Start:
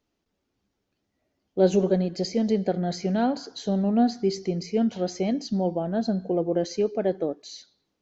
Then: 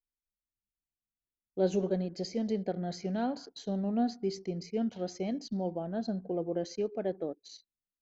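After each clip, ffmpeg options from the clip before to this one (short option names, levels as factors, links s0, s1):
-af "anlmdn=0.1,volume=0.376"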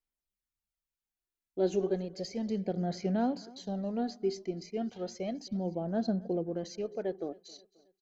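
-af "aphaser=in_gain=1:out_gain=1:delay=3:decay=0.43:speed=0.33:type=sinusoidal,aecho=1:1:267|534|801:0.0708|0.034|0.0163,volume=0.841"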